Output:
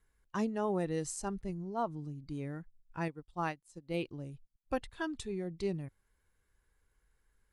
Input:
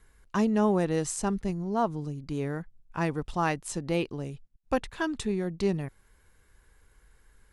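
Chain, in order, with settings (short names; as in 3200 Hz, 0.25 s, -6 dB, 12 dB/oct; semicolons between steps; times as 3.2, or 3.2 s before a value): spectral noise reduction 7 dB; 3.08–3.94 upward expander 2.5:1, over -37 dBFS; gain -7 dB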